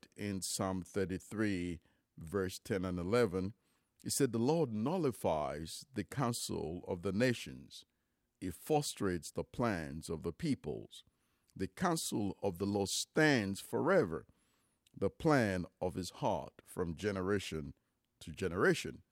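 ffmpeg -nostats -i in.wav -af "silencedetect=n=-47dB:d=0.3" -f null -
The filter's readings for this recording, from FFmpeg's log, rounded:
silence_start: 1.76
silence_end: 2.18 | silence_duration: 0.42
silence_start: 3.51
silence_end: 4.02 | silence_duration: 0.51
silence_start: 7.80
silence_end: 8.42 | silence_duration: 0.62
silence_start: 11.00
silence_end: 11.50 | silence_duration: 0.50
silence_start: 14.21
silence_end: 14.97 | silence_duration: 0.76
silence_start: 17.71
silence_end: 18.21 | silence_duration: 0.50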